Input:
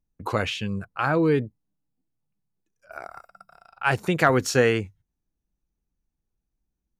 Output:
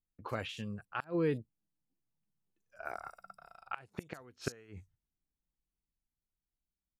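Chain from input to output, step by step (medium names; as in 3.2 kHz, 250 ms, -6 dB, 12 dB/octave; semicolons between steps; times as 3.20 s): Doppler pass-by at 3.20 s, 15 m/s, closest 15 m; inverted gate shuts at -17 dBFS, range -29 dB; bands offset in time lows, highs 40 ms, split 4.9 kHz; trim -3 dB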